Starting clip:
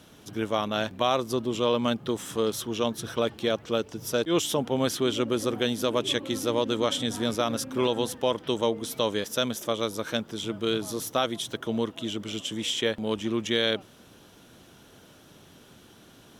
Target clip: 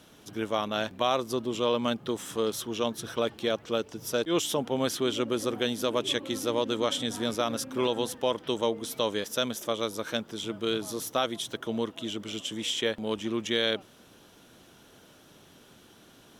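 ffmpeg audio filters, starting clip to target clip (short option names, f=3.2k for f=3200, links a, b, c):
-af "equalizer=f=88:w=0.54:g=-4,volume=-1.5dB"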